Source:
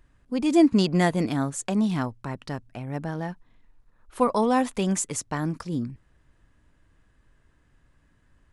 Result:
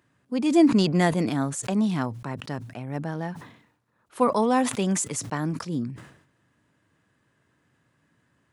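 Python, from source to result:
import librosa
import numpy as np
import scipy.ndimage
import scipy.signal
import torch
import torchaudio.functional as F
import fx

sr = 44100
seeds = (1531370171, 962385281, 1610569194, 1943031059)

y = scipy.signal.sosfilt(scipy.signal.butter(4, 110.0, 'highpass', fs=sr, output='sos'), x)
y = fx.sustainer(y, sr, db_per_s=85.0)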